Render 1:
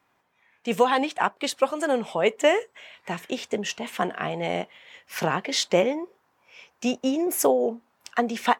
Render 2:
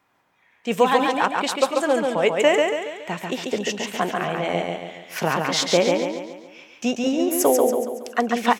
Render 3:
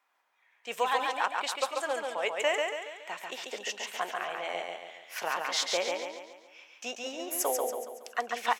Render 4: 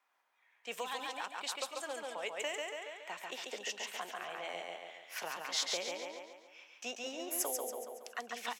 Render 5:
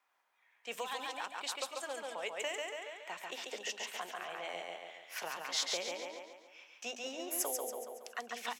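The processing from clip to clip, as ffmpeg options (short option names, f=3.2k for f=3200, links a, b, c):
-af "aecho=1:1:140|280|420|560|700|840:0.668|0.307|0.141|0.0651|0.0299|0.0138,volume=2dB"
-af "highpass=700,volume=-7dB"
-filter_complex "[0:a]acrossover=split=290|3000[a][b][c];[b]acompressor=threshold=-36dB:ratio=6[d];[a][d][c]amix=inputs=3:normalize=0,volume=-3.5dB"
-af "bandreject=f=50:t=h:w=6,bandreject=f=100:t=h:w=6,bandreject=f=150:t=h:w=6,bandreject=f=200:t=h:w=6,bandreject=f=250:t=h:w=6,bandreject=f=300:t=h:w=6"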